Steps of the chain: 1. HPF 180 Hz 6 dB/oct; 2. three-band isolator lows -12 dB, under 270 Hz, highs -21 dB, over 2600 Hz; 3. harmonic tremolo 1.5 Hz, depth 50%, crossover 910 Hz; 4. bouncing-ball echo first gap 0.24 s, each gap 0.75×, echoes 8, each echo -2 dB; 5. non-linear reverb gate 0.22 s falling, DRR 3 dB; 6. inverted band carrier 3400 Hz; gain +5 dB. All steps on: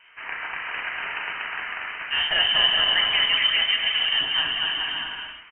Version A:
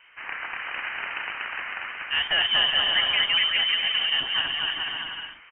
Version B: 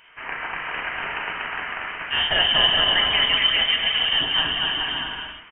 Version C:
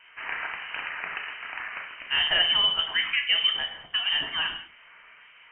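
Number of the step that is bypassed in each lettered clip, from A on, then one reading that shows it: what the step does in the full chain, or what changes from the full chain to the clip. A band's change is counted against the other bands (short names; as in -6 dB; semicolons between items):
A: 5, loudness change -2.0 LU; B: 2, 2 kHz band -5.5 dB; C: 4, loudness change -3.5 LU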